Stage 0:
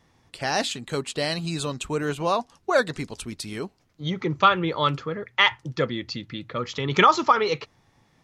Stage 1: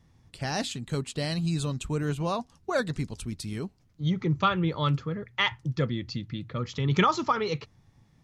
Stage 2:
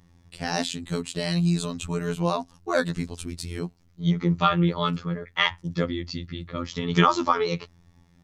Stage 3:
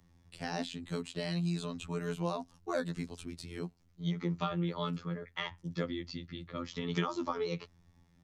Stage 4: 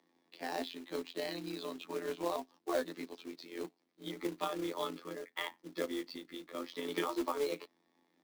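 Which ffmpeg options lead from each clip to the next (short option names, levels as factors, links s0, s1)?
-af "bass=f=250:g=13,treble=f=4000:g=3,volume=0.422"
-af "afftfilt=real='hypot(re,im)*cos(PI*b)':imag='0':win_size=2048:overlap=0.75,volume=2.11"
-filter_complex "[0:a]acrossover=split=130|630|4600[s0][s1][s2][s3];[s0]acompressor=threshold=0.00562:ratio=4[s4];[s1]acompressor=threshold=0.0708:ratio=4[s5];[s2]acompressor=threshold=0.0316:ratio=4[s6];[s3]acompressor=threshold=0.00562:ratio=4[s7];[s4][s5][s6][s7]amix=inputs=4:normalize=0,volume=0.422"
-af "tremolo=f=140:d=0.462,highpass=f=300:w=0.5412,highpass=f=300:w=1.3066,equalizer=f=300:t=q:w=4:g=5,equalizer=f=1400:t=q:w=4:g=-6,equalizer=f=2800:t=q:w=4:g=-5,lowpass=f=4600:w=0.5412,lowpass=f=4600:w=1.3066,acrusher=bits=3:mode=log:mix=0:aa=0.000001,volume=1.33"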